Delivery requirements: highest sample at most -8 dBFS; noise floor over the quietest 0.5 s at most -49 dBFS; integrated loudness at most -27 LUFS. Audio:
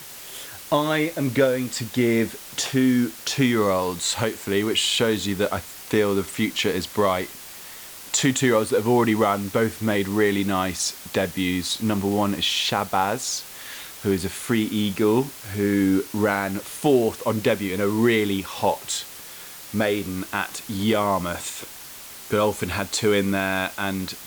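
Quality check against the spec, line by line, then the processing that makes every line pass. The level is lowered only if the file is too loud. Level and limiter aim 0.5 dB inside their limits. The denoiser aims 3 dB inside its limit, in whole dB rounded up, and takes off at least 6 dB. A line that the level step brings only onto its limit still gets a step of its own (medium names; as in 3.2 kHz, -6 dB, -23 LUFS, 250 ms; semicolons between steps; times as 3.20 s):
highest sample -7.0 dBFS: fail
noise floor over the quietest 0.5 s -40 dBFS: fail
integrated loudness -23.0 LUFS: fail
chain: noise reduction 8 dB, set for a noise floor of -40 dBFS; trim -4.5 dB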